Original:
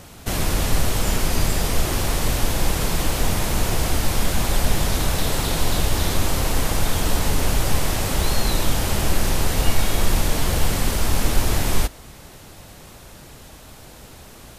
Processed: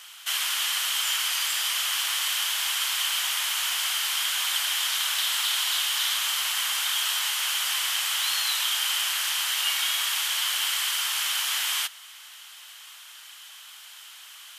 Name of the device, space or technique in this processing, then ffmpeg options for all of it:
headphones lying on a table: -af "highpass=f=1.2k:w=0.5412,highpass=f=1.2k:w=1.3066,equalizer=f=3.1k:t=o:w=0.25:g=12"

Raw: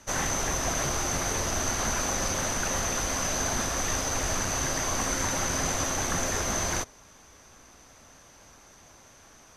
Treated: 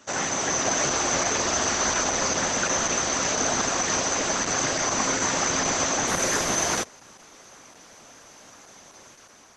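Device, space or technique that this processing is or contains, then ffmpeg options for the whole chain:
video call: -filter_complex "[0:a]asplit=3[a][b][c];[a]afade=t=out:st=0.68:d=0.02[d];[b]asubboost=boost=10.5:cutoff=51,afade=t=in:st=0.68:d=0.02,afade=t=out:st=2.23:d=0.02[e];[c]afade=t=in:st=2.23:d=0.02[f];[d][e][f]amix=inputs=3:normalize=0,highpass=180,dynaudnorm=f=200:g=5:m=3.5dB,volume=3dB" -ar 48000 -c:a libopus -b:a 12k

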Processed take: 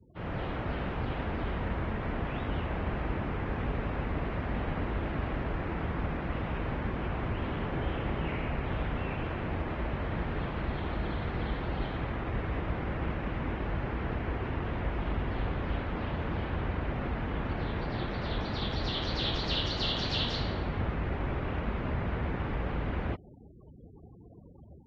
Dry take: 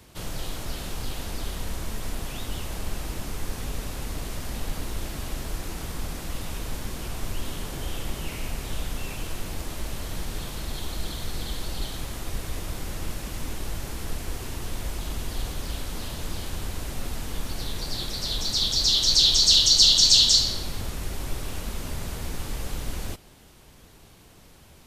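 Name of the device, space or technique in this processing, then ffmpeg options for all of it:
action camera in a waterproof case: -af "highpass=58,afftfilt=real='re*gte(hypot(re,im),0.00501)':imag='im*gte(hypot(re,im),0.00501)':win_size=1024:overlap=0.75,lowpass=f=2.2k:w=0.5412,lowpass=f=2.2k:w=1.3066,dynaudnorm=f=170:g=3:m=8dB,volume=-4dB" -ar 48000 -c:a aac -b:a 48k

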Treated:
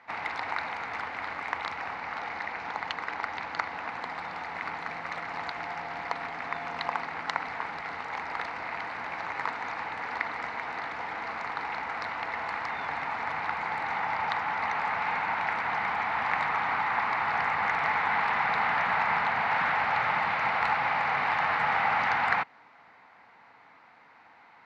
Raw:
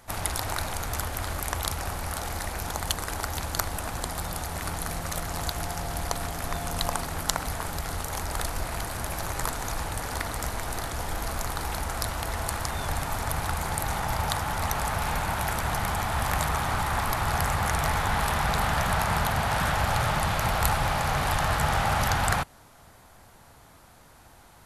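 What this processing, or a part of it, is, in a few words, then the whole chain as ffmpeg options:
phone earpiece: -filter_complex "[0:a]highpass=340,equalizer=f=370:t=q:w=4:g=-8,equalizer=f=590:t=q:w=4:g=-8,equalizer=f=910:t=q:w=4:g=3,equalizer=f=2.1k:t=q:w=4:g=8,equalizer=f=3.3k:t=q:w=4:g=-8,lowpass=f=3.5k:w=0.5412,lowpass=f=3.5k:w=1.3066,asettb=1/sr,asplit=3[a][b][c];[a]atrim=end=1.964[d];[b]atrim=start=1.96:end=3.88,asetpts=PTS-STARTPTS,afade=t=in:d=0.004:c=qsin,afade=t=out:st=1.916:d=0.004:c=qsin,lowpass=f=7.8k:w=0.5412,lowpass=f=7.8k:w=1.3066[e];[c]atrim=start=3.876[f];[d][e]acrossfade=d=0.004:c1=hsin:c2=qsin[g];[g][f]acrossfade=d=0.004:c1=qsin:c2=hsin"

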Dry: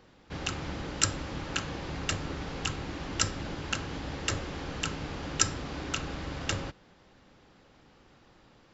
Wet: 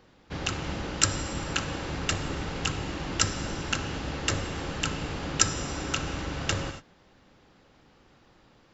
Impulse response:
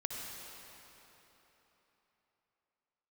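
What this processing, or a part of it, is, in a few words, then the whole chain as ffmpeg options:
keyed gated reverb: -filter_complex "[0:a]asplit=3[a][b][c];[1:a]atrim=start_sample=2205[d];[b][d]afir=irnorm=-1:irlink=0[e];[c]apad=whole_len=385169[f];[e][f]sidechaingate=range=-33dB:threshold=-47dB:ratio=16:detection=peak,volume=-5.5dB[g];[a][g]amix=inputs=2:normalize=0"

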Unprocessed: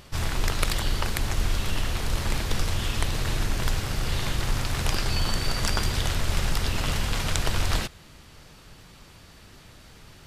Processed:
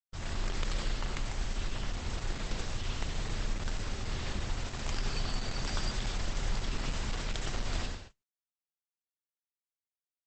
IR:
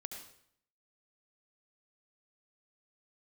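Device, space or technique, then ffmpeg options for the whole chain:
speakerphone in a meeting room: -filter_complex "[1:a]atrim=start_sample=2205[a];[0:a][a]afir=irnorm=-1:irlink=0,dynaudnorm=f=130:g=3:m=4dB,agate=range=-54dB:threshold=-37dB:ratio=16:detection=peak,volume=-9dB" -ar 48000 -c:a libopus -b:a 12k

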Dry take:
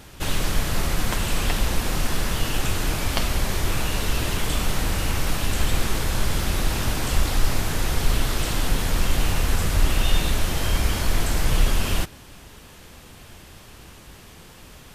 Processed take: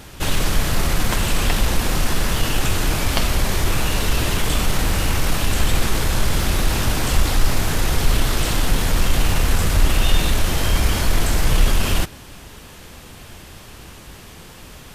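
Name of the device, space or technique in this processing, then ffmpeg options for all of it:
parallel distortion: -filter_complex "[0:a]asplit=2[a][b];[b]asoftclip=type=hard:threshold=-21dB,volume=-9.5dB[c];[a][c]amix=inputs=2:normalize=0,volume=2.5dB"

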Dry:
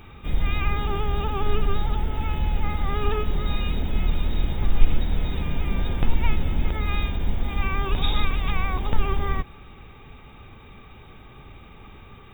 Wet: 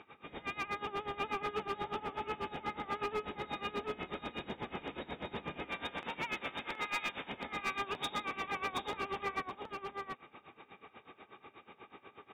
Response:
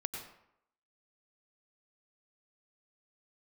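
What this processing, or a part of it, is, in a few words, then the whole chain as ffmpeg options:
helicopter radio: -filter_complex "[0:a]asettb=1/sr,asplit=3[a][b][c];[a]atrim=end=5.694[d];[b]atrim=start=5.69:end=7.32,asetpts=PTS-STARTPTS,afade=t=in:d=0.004:c=qsin,afade=t=out:st=1.626:d=0.004:c=qsin,tiltshelf=f=660:g=-7[e];[c]atrim=start=7.316[f];[d][e]acrossfade=d=0.004:c1=hsin:c2=qsin[g];[g][f]acrossfade=d=0.004:c1=qsin:c2=hsin,highpass=330,lowpass=2.9k,aeval=exprs='val(0)*pow(10,-19*(0.5-0.5*cos(2*PI*8.2*n/s))/20)':c=same,asoftclip=type=hard:threshold=-30.5dB,aecho=1:1:723:0.631,volume=-1dB"

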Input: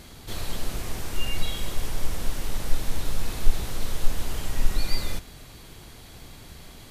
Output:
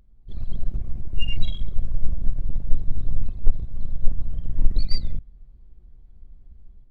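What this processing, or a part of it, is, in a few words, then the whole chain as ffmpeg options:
voice memo with heavy noise removal: -af "anlmdn=158,dynaudnorm=f=200:g=3:m=6.5dB"

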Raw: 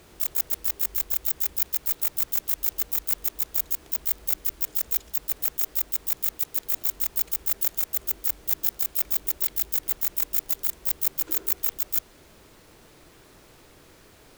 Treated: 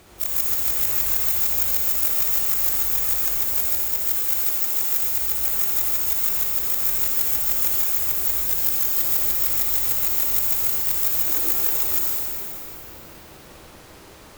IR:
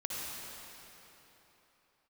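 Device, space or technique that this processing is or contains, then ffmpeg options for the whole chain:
shimmer-style reverb: -filter_complex "[0:a]asettb=1/sr,asplit=3[a][b][c];[a]atrim=end=3.664[d];[b]atrim=start=3.66:end=5.03,asetpts=PTS-STARTPTS,afade=t=in:d=0.004:c=qsin,afade=t=out:st=1.366:d=0.004:c=qsin,highpass=f=190:p=1[e];[c]atrim=start=5.026[f];[d][e]acrossfade=d=0.004:c1=hsin:c2=qsin[g];[g][f]acrossfade=d=0.004:c1=qsin:c2=hsin,asplit=2[h][i];[i]asetrate=88200,aresample=44100,atempo=0.5,volume=-6dB[j];[h][j]amix=inputs=2:normalize=0[k];[1:a]atrim=start_sample=2205[l];[k][l]afir=irnorm=-1:irlink=0,volume=4dB"

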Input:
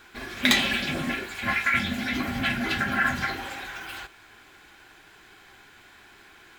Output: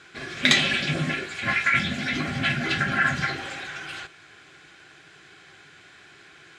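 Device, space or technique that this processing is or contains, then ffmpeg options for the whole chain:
car door speaker: -af "highpass=98,equalizer=f=150:t=q:w=4:g=10,equalizer=f=230:t=q:w=4:g=-7,equalizer=f=910:t=q:w=4:g=-10,lowpass=f=8.6k:w=0.5412,lowpass=f=8.6k:w=1.3066,volume=2.5dB"

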